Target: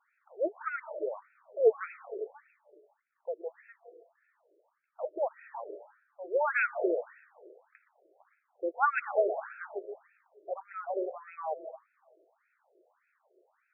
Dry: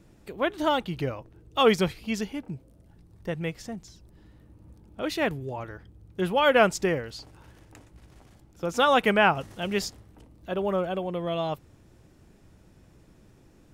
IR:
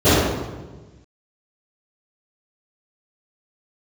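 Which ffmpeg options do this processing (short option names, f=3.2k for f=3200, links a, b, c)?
-filter_complex "[0:a]asplit=2[a][b];[b]aemphasis=mode=production:type=50kf[c];[1:a]atrim=start_sample=2205,lowpass=4.7k,adelay=132[d];[c][d]afir=irnorm=-1:irlink=0,volume=-43dB[e];[a][e]amix=inputs=2:normalize=0,afftfilt=real='re*between(b*sr/1024,460*pow(1900/460,0.5+0.5*sin(2*PI*1.7*pts/sr))/1.41,460*pow(1900/460,0.5+0.5*sin(2*PI*1.7*pts/sr))*1.41)':imag='im*between(b*sr/1024,460*pow(1900/460,0.5+0.5*sin(2*PI*1.7*pts/sr))/1.41,460*pow(1900/460,0.5+0.5*sin(2*PI*1.7*pts/sr))*1.41)':win_size=1024:overlap=0.75,volume=-1.5dB"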